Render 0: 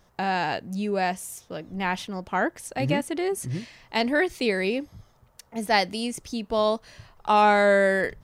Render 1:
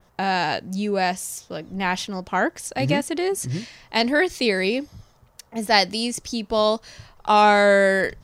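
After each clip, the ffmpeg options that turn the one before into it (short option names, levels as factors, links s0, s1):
-af "adynamicequalizer=threshold=0.00501:dfrequency=5500:dqfactor=1.1:tfrequency=5500:tqfactor=1.1:attack=5:release=100:ratio=0.375:range=3.5:mode=boostabove:tftype=bell,volume=1.41"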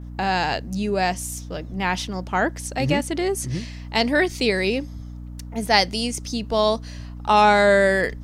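-af "aeval=exprs='val(0)+0.02*(sin(2*PI*60*n/s)+sin(2*PI*2*60*n/s)/2+sin(2*PI*3*60*n/s)/3+sin(2*PI*4*60*n/s)/4+sin(2*PI*5*60*n/s)/5)':c=same"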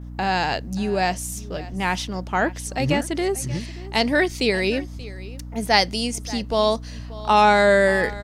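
-af "aecho=1:1:581:0.119"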